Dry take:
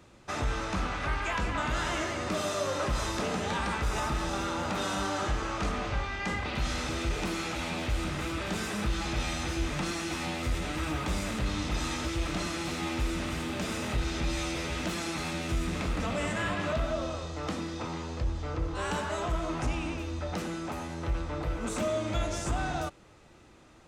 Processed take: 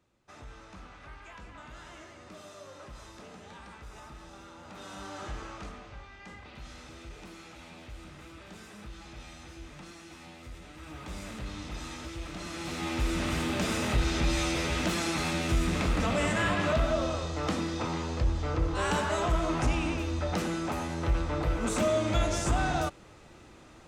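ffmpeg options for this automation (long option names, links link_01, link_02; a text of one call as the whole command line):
ffmpeg -i in.wav -af "volume=10.5dB,afade=type=in:start_time=4.62:duration=0.76:silence=0.354813,afade=type=out:start_time=5.38:duration=0.47:silence=0.446684,afade=type=in:start_time=10.77:duration=0.47:silence=0.446684,afade=type=in:start_time=12.38:duration=0.98:silence=0.266073" out.wav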